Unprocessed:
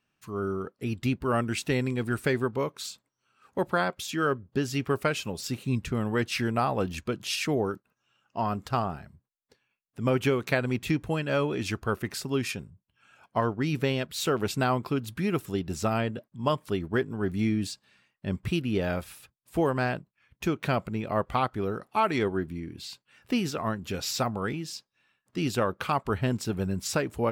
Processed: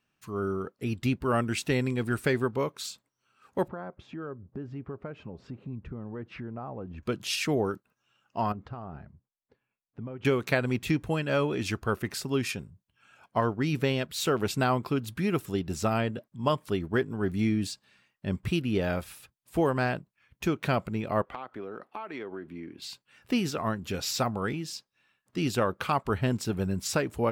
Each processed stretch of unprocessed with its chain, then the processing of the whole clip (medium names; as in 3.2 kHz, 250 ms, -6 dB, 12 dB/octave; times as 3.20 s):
3.68–7.03 s: low-pass 1.5 kHz + tilt shelf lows +4 dB, about 1.1 kHz + compression 2.5:1, threshold -41 dBFS
8.52–10.25 s: compression 8:1, threshold -33 dBFS + tape spacing loss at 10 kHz 39 dB
21.22–22.82 s: three-band isolator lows -16 dB, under 220 Hz, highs -15 dB, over 3.5 kHz + compression 8:1, threshold -34 dBFS
whole clip: none